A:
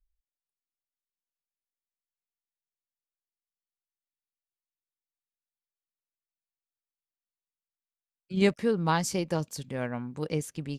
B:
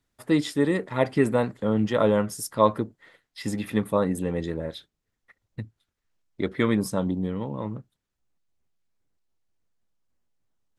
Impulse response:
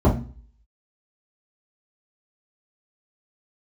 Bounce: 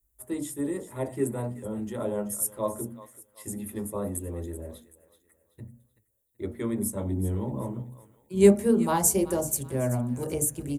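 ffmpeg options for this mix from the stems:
-filter_complex "[0:a]volume=-5.5dB,asplit=3[a][b][c];[b]volume=-15dB[d];[c]volume=-14dB[e];[1:a]volume=-9dB,afade=t=in:st=6.91:d=0.34:silence=0.421697,asplit=3[f][g][h];[g]volume=-16.5dB[i];[h]volume=-12dB[j];[2:a]atrim=start_sample=2205[k];[d][i]amix=inputs=2:normalize=0[l];[l][k]afir=irnorm=-1:irlink=0[m];[e][j]amix=inputs=2:normalize=0,aecho=0:1:381|762|1143|1524|1905:1|0.36|0.13|0.0467|0.0168[n];[a][f][m][n]amix=inputs=4:normalize=0,equalizer=f=160:t=o:w=1.1:g=-13,aexciter=amount=15.1:drive=3.4:freq=7.1k"

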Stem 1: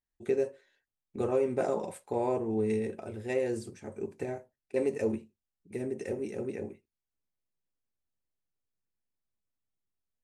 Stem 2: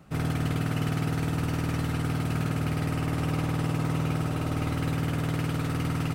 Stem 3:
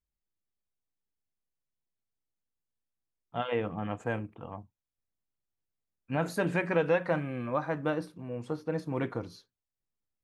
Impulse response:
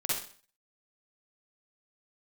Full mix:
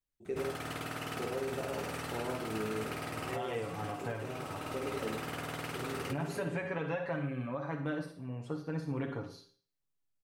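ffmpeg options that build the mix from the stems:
-filter_complex "[0:a]highpass=62,volume=-12dB,asplit=2[a][b];[b]volume=-5.5dB[c];[1:a]acrossover=split=390|3000[d][e][f];[d]acompressor=threshold=-42dB:ratio=6[g];[g][e][f]amix=inputs=3:normalize=0,adelay=250,volume=-4.5dB,asplit=2[h][i];[i]volume=-18.5dB[j];[2:a]aecho=1:1:7.1:0.75,volume=-7dB,asplit=3[k][l][m];[l]volume=-10.5dB[n];[m]apad=whole_len=282080[o];[h][o]sidechaincompress=threshold=-42dB:ratio=8:attack=10:release=494[p];[3:a]atrim=start_sample=2205[q];[c][j][n]amix=inputs=3:normalize=0[r];[r][q]afir=irnorm=-1:irlink=0[s];[a][p][k][s]amix=inputs=4:normalize=0,alimiter=level_in=2dB:limit=-24dB:level=0:latency=1:release=181,volume=-2dB"

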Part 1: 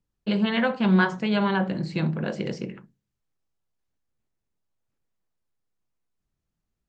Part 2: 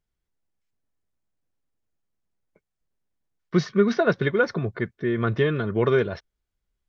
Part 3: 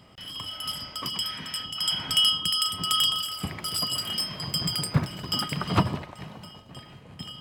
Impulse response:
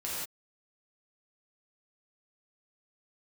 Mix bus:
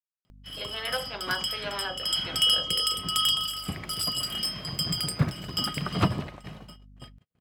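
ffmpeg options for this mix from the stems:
-filter_complex "[0:a]highpass=f=480:w=0.5412,highpass=f=480:w=1.3066,aeval=exprs='val(0)+0.00631*(sin(2*PI*50*n/s)+sin(2*PI*2*50*n/s)/2+sin(2*PI*3*50*n/s)/3+sin(2*PI*4*50*n/s)/4+sin(2*PI*5*50*n/s)/5)':c=same,adelay=300,volume=-6dB[a];[2:a]agate=range=-53dB:threshold=-42dB:ratio=16:detection=peak,adelay=250,volume=-1dB[b];[a][b]amix=inputs=2:normalize=0,equalizer=f=940:t=o:w=0.29:g=-6,acompressor=mode=upward:threshold=-50dB:ratio=2.5"

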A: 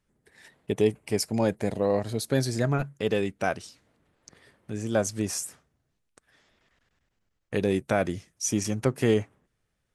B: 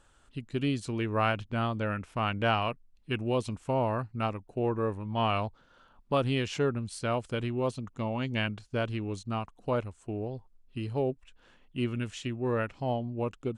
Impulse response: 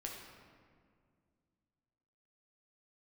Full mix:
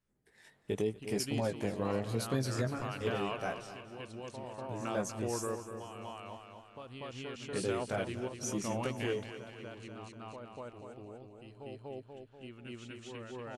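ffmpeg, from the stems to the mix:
-filter_complex "[0:a]dynaudnorm=f=130:g=13:m=8dB,flanger=delay=15:depth=5.9:speed=0.81,volume=-5dB,afade=t=out:st=2.6:d=0.23:silence=0.354813,asplit=3[a][b][c];[b]volume=-15dB[d];[1:a]lowshelf=f=280:g=-8,alimiter=limit=-24dB:level=0:latency=1,adelay=650,volume=-2dB,asplit=2[e][f];[f]volume=-9dB[g];[c]apad=whole_len=627205[h];[e][h]sidechaingate=range=-12dB:threshold=-53dB:ratio=16:detection=peak[i];[d][g]amix=inputs=2:normalize=0,aecho=0:1:242|484|726|968|1210|1452|1694:1|0.51|0.26|0.133|0.0677|0.0345|0.0176[j];[a][i][j]amix=inputs=3:normalize=0,alimiter=limit=-22dB:level=0:latency=1:release=441"

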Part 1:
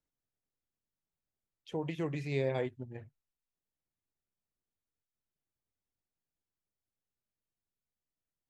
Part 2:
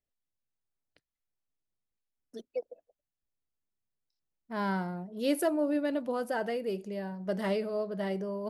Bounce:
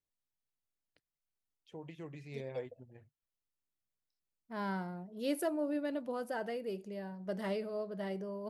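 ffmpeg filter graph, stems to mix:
-filter_complex "[0:a]volume=-11.5dB[a];[1:a]volume=-6dB[b];[a][b]amix=inputs=2:normalize=0"

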